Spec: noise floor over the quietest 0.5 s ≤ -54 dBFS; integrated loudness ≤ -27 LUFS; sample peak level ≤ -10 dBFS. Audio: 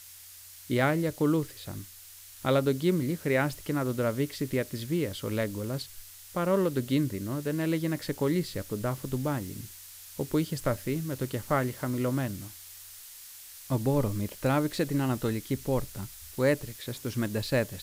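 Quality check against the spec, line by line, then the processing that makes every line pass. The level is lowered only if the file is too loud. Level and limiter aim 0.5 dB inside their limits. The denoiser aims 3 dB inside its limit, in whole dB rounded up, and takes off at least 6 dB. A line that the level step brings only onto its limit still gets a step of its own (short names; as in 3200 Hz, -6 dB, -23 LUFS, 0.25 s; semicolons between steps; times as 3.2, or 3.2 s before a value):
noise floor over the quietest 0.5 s -49 dBFS: fail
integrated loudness -30.0 LUFS: OK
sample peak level -12.5 dBFS: OK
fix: denoiser 8 dB, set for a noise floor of -49 dBFS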